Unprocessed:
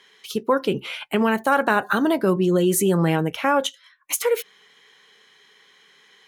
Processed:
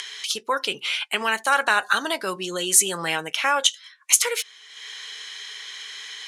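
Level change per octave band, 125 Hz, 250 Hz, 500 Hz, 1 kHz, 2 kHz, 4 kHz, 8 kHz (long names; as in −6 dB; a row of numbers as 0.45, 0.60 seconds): −18.0, −14.5, −8.5, −1.0, +3.5, +8.5, +9.5 decibels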